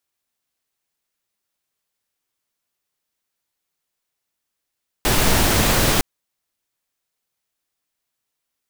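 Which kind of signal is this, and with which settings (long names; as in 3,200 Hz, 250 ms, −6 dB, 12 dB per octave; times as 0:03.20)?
noise pink, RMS −16.5 dBFS 0.96 s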